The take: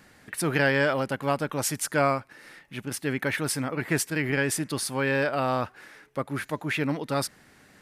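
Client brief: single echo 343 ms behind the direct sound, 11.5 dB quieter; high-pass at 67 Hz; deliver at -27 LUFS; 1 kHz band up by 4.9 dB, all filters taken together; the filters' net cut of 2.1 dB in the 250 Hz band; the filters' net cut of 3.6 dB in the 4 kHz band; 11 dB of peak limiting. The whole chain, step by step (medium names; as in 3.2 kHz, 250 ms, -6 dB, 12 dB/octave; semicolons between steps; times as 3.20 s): high-pass 67 Hz; peaking EQ 250 Hz -3 dB; peaking EQ 1 kHz +7 dB; peaking EQ 4 kHz -5.5 dB; peak limiter -18 dBFS; delay 343 ms -11.5 dB; trim +3.5 dB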